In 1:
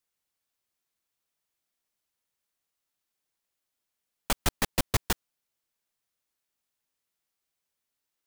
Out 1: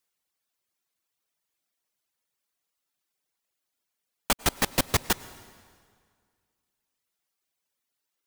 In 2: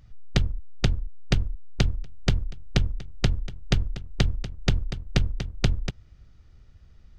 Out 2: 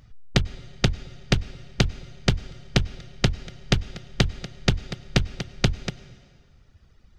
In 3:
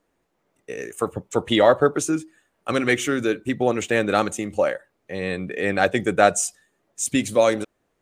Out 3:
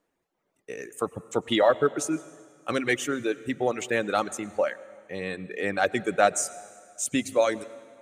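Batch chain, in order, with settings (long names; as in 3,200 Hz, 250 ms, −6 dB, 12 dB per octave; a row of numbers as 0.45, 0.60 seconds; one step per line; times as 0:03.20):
reverb reduction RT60 1.1 s
low-shelf EQ 88 Hz −8.5 dB
dense smooth reverb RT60 2 s, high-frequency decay 0.85×, pre-delay 85 ms, DRR 18 dB
loudness normalisation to −27 LKFS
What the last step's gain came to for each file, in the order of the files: +4.0, +5.0, −4.0 decibels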